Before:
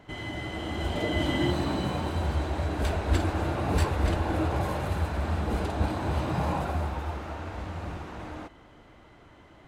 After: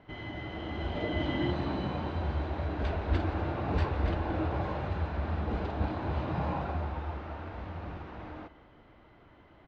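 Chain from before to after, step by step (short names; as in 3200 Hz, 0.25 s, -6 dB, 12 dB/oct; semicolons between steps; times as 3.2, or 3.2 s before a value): Bessel low-pass 3200 Hz, order 6; on a send: echo 0.172 s -17 dB; on the sum: gain -4 dB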